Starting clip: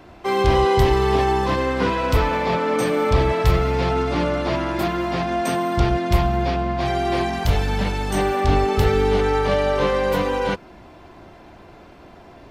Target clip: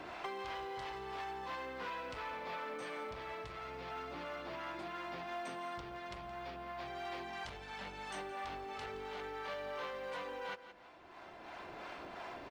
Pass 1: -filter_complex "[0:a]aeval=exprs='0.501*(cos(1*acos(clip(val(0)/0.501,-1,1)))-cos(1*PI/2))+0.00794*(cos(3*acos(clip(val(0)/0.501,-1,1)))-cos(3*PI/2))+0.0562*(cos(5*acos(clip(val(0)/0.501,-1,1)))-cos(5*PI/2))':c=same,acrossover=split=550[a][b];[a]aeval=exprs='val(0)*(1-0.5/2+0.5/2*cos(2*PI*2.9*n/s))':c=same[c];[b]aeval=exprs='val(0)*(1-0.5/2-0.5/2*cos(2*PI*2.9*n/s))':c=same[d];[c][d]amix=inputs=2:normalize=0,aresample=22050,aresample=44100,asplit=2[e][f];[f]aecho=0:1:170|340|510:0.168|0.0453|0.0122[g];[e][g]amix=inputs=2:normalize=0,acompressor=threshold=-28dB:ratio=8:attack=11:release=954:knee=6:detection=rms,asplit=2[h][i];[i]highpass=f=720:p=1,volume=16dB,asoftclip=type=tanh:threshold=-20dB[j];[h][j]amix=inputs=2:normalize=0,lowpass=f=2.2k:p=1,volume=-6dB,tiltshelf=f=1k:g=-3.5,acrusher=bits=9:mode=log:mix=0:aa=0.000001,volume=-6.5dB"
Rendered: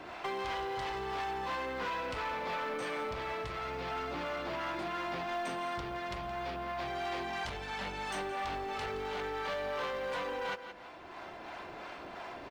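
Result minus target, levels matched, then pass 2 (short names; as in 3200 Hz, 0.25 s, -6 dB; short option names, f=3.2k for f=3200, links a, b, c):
compressor: peak gain reduction -9 dB
-filter_complex "[0:a]aeval=exprs='0.501*(cos(1*acos(clip(val(0)/0.501,-1,1)))-cos(1*PI/2))+0.00794*(cos(3*acos(clip(val(0)/0.501,-1,1)))-cos(3*PI/2))+0.0562*(cos(5*acos(clip(val(0)/0.501,-1,1)))-cos(5*PI/2))':c=same,acrossover=split=550[a][b];[a]aeval=exprs='val(0)*(1-0.5/2+0.5/2*cos(2*PI*2.9*n/s))':c=same[c];[b]aeval=exprs='val(0)*(1-0.5/2-0.5/2*cos(2*PI*2.9*n/s))':c=same[d];[c][d]amix=inputs=2:normalize=0,aresample=22050,aresample=44100,asplit=2[e][f];[f]aecho=0:1:170|340|510:0.168|0.0453|0.0122[g];[e][g]amix=inputs=2:normalize=0,acompressor=threshold=-38dB:ratio=8:attack=11:release=954:knee=6:detection=rms,asplit=2[h][i];[i]highpass=f=720:p=1,volume=16dB,asoftclip=type=tanh:threshold=-20dB[j];[h][j]amix=inputs=2:normalize=0,lowpass=f=2.2k:p=1,volume=-6dB,tiltshelf=f=1k:g=-3.5,acrusher=bits=9:mode=log:mix=0:aa=0.000001,volume=-6.5dB"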